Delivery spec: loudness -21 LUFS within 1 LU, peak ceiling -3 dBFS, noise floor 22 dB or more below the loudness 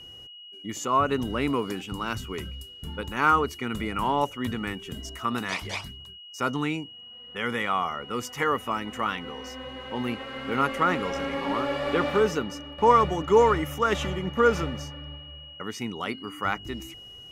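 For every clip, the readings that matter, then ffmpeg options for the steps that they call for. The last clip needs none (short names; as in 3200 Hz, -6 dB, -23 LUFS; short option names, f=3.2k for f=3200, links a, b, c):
steady tone 2900 Hz; tone level -43 dBFS; loudness -27.0 LUFS; peak -7.5 dBFS; loudness target -21.0 LUFS
-> -af "bandreject=f=2.9k:w=30"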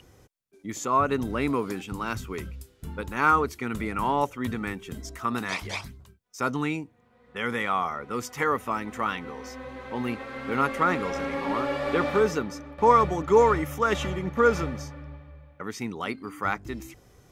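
steady tone none; loudness -27.0 LUFS; peak -7.5 dBFS; loudness target -21.0 LUFS
-> -af "volume=6dB,alimiter=limit=-3dB:level=0:latency=1"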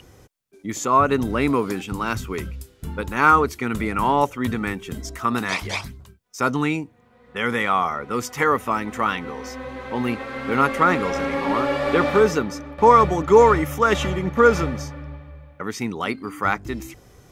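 loudness -21.0 LUFS; peak -3.0 dBFS; noise floor -54 dBFS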